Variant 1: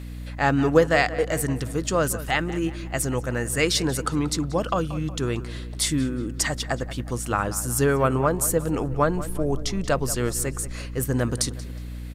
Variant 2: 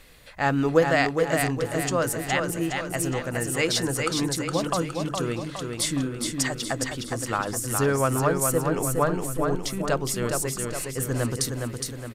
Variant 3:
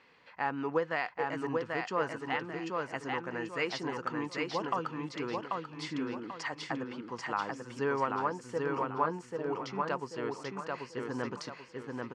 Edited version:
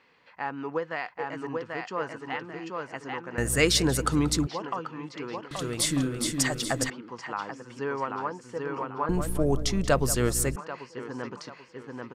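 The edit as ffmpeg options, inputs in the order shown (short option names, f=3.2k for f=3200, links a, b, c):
-filter_complex "[0:a]asplit=2[a][b];[2:a]asplit=4[c][d][e][f];[c]atrim=end=3.382[g];[a]atrim=start=3.378:end=4.472[h];[d]atrim=start=4.468:end=5.512[i];[1:a]atrim=start=5.508:end=6.902[j];[e]atrim=start=6.898:end=9.092[k];[b]atrim=start=9.088:end=10.562[l];[f]atrim=start=10.558[m];[g][h]acrossfade=d=0.004:c1=hsin:c2=hsin[n];[n][i]acrossfade=d=0.004:c1=hsin:c2=hsin[o];[o][j]acrossfade=d=0.004:c1=hsin:c2=hsin[p];[p][k]acrossfade=d=0.004:c1=hsin:c2=hsin[q];[q][l]acrossfade=d=0.004:c1=hsin:c2=hsin[r];[r][m]acrossfade=d=0.004:c1=hsin:c2=hsin"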